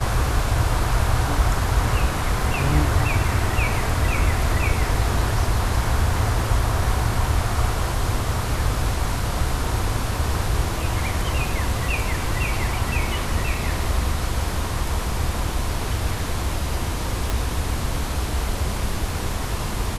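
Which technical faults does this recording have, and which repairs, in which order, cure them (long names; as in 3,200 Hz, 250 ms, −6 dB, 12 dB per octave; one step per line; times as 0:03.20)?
0:17.30: click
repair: click removal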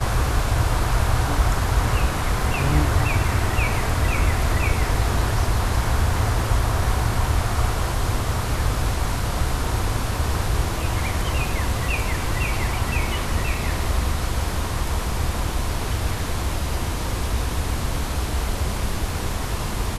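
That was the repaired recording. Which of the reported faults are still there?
0:17.30: click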